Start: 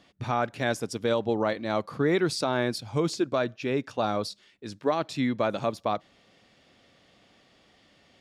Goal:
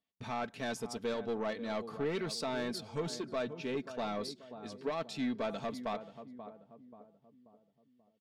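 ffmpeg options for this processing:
-filter_complex "[0:a]agate=range=-25dB:threshold=-56dB:ratio=16:detection=peak,asplit=2[a][b];[b]adelay=534,lowpass=f=940:p=1,volume=-12.5dB,asplit=2[c][d];[d]adelay=534,lowpass=f=940:p=1,volume=0.49,asplit=2[e][f];[f]adelay=534,lowpass=f=940:p=1,volume=0.49,asplit=2[g][h];[h]adelay=534,lowpass=f=940:p=1,volume=0.49,asplit=2[i][j];[j]adelay=534,lowpass=f=940:p=1,volume=0.49[k];[c][e][g][i][k]amix=inputs=5:normalize=0[l];[a][l]amix=inputs=2:normalize=0,asoftclip=type=tanh:threshold=-22dB,equalizer=f=3.4k:w=1.5:g=2,aecho=1:1:4.5:0.5,volume=-8dB"

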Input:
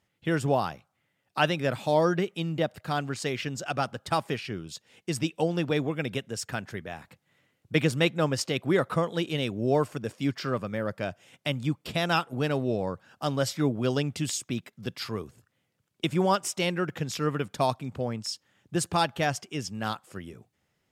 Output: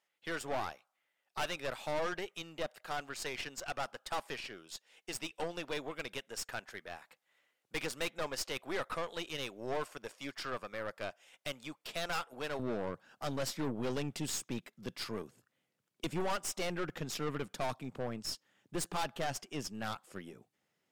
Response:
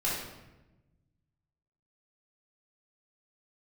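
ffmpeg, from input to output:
-af "asetnsamples=n=441:p=0,asendcmd='12.59 highpass f 190',highpass=570,aeval=exprs='(tanh(31.6*val(0)+0.65)-tanh(0.65))/31.6':c=same,volume=-1.5dB"

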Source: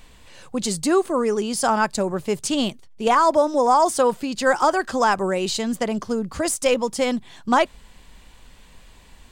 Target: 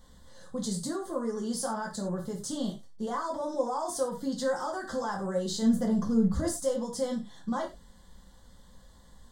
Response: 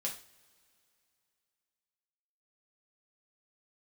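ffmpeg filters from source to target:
-filter_complex "[0:a]asuperstop=centerf=2500:order=4:qfactor=1.7,equalizer=f=77:t=o:w=2.9:g=7,alimiter=limit=-17dB:level=0:latency=1:release=63,asettb=1/sr,asplit=3[a][b][c];[a]atrim=end=5.624[d];[b]atrim=start=5.62:end=6.61,asetpts=PTS-STARTPTS,afade=t=in:d=0.004:c=qsin,afade=t=out:st=0.986:d=0.004:c=qsin,lowshelf=f=320:g=10.5[e];[c]atrim=start=6.606[f];[d][e]acrossfade=d=0.004:c1=hsin:c2=qsin[g];[g][f]acrossfade=d=0.004:c1=qsin:c2=hsin[h];[1:a]atrim=start_sample=2205,afade=t=out:st=0.17:d=0.01,atrim=end_sample=7938[i];[h][i]afir=irnorm=-1:irlink=0,volume=-8.5dB"

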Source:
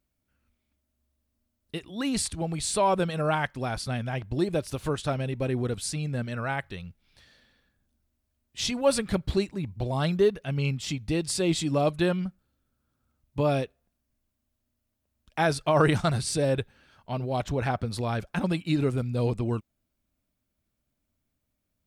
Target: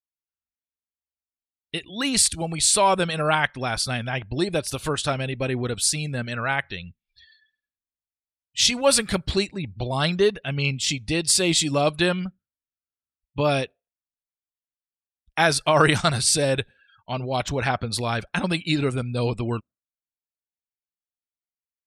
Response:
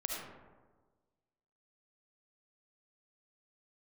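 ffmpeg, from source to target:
-af "tiltshelf=f=1.2k:g=-5.5,afftdn=nr=35:nf=-51,volume=6.5dB"

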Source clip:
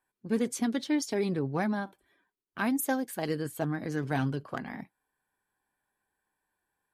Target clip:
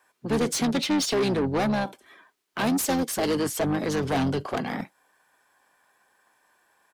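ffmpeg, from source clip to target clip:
-filter_complex "[0:a]acrossover=split=140|860|2700[a][b][c][d];[c]acompressor=threshold=-56dB:ratio=5[e];[a][b][e][d]amix=inputs=4:normalize=0,asplit=2[f][g];[g]asetrate=29433,aresample=44100,atempo=1.49831,volume=-6dB[h];[f][h]amix=inputs=2:normalize=0,asplit=2[i][j];[j]highpass=f=720:p=1,volume=25dB,asoftclip=type=tanh:threshold=-16dB[k];[i][k]amix=inputs=2:normalize=0,lowpass=f=5.5k:p=1,volume=-6dB"

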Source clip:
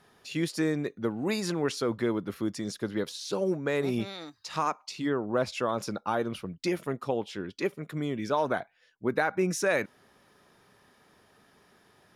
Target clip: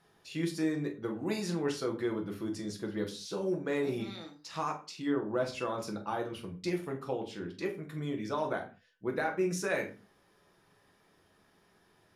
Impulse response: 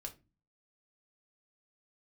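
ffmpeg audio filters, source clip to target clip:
-filter_complex "[1:a]atrim=start_sample=2205,afade=t=out:st=0.2:d=0.01,atrim=end_sample=9261,asetrate=29106,aresample=44100[a];[0:a][a]afir=irnorm=-1:irlink=0,volume=-4dB"

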